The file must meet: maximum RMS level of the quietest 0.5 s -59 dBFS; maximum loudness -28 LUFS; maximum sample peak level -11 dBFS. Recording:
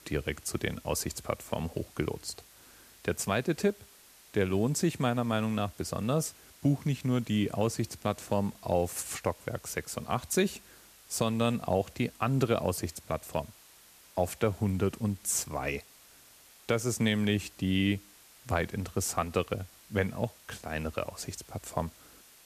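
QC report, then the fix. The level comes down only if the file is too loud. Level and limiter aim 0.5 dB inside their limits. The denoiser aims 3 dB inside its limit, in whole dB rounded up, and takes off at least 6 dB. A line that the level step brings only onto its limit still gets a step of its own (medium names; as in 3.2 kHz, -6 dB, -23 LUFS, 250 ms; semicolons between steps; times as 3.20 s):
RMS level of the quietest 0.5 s -57 dBFS: fail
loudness -32.0 LUFS: pass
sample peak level -13.0 dBFS: pass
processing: noise reduction 6 dB, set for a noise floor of -57 dBFS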